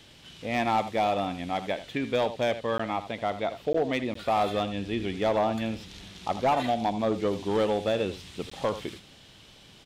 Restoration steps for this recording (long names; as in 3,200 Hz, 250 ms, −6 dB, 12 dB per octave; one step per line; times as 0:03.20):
clipped peaks rebuilt −18.5 dBFS
repair the gap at 0:02.78/0:03.73/0:04.14/0:08.50, 14 ms
echo removal 80 ms −13 dB